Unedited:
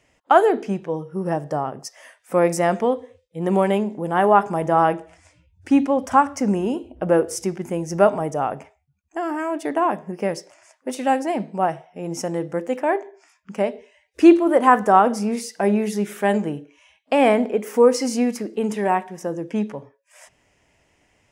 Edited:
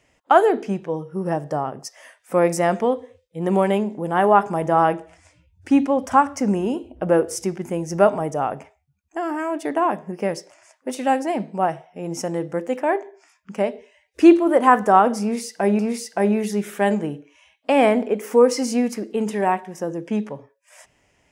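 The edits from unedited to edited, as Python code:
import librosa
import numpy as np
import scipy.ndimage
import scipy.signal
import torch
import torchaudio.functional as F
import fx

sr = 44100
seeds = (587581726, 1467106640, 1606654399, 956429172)

y = fx.edit(x, sr, fx.repeat(start_s=15.22, length_s=0.57, count=2), tone=tone)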